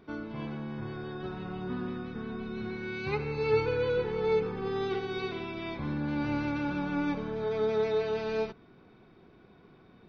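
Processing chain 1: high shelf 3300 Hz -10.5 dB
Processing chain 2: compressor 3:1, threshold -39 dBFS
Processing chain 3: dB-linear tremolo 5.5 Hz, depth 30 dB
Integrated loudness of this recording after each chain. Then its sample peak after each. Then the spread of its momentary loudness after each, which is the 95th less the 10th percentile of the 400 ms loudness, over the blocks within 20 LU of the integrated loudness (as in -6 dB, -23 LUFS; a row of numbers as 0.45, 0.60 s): -33.0, -40.5, -38.5 LUFS; -16.5, -27.5, -18.0 dBFS; 10, 19, 11 LU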